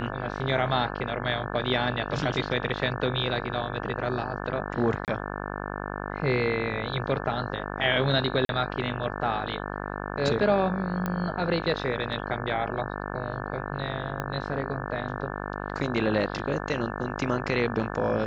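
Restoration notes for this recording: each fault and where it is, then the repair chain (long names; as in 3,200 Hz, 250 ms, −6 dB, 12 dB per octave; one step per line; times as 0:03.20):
mains buzz 50 Hz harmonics 35 −34 dBFS
0:05.05–0:05.08: drop-out 28 ms
0:08.45–0:08.49: drop-out 42 ms
0:11.06: click −16 dBFS
0:14.20: click −16 dBFS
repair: click removal
hum removal 50 Hz, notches 35
repair the gap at 0:05.05, 28 ms
repair the gap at 0:08.45, 42 ms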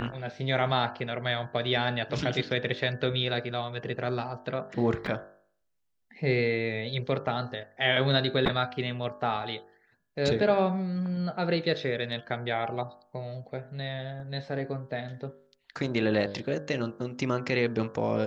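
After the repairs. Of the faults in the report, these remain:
0:14.20: click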